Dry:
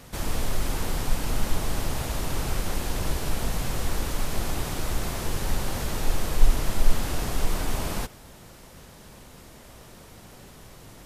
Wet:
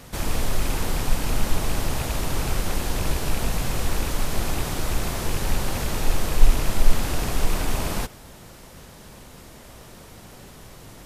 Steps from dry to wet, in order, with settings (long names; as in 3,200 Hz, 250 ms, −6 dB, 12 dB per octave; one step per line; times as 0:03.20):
loose part that buzzes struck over −26 dBFS, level −28 dBFS
level +3 dB